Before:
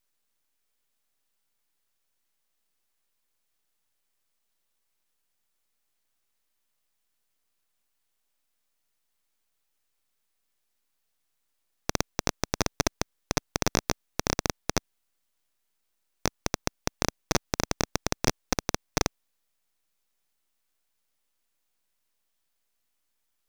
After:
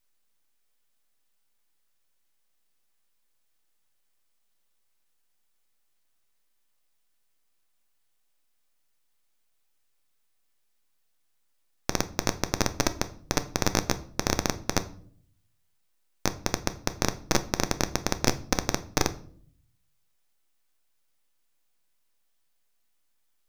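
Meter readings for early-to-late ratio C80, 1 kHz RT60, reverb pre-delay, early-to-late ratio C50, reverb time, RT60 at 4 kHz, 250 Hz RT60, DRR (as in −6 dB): 20.5 dB, 0.45 s, 3 ms, 17.0 dB, 0.55 s, 0.40 s, 0.85 s, 10.0 dB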